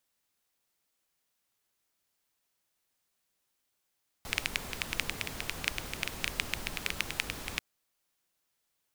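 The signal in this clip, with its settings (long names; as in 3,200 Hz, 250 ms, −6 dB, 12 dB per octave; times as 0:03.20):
rain-like ticks over hiss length 3.34 s, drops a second 10, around 2,400 Hz, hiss −3 dB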